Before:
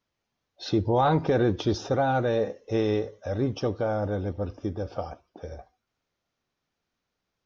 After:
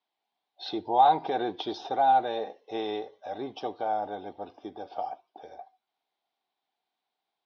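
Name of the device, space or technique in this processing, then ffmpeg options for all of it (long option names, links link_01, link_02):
phone earpiece: -af "highpass=490,equalizer=frequency=530:width_type=q:width=4:gain=-10,equalizer=frequency=770:width_type=q:width=4:gain=10,equalizer=frequency=1300:width_type=q:width=4:gain=-9,equalizer=frequency=1800:width_type=q:width=4:gain=-6,equalizer=frequency=2600:width_type=q:width=4:gain=-4,equalizer=frequency=3700:width_type=q:width=4:gain=4,lowpass=frequency=4100:width=0.5412,lowpass=frequency=4100:width=1.3066"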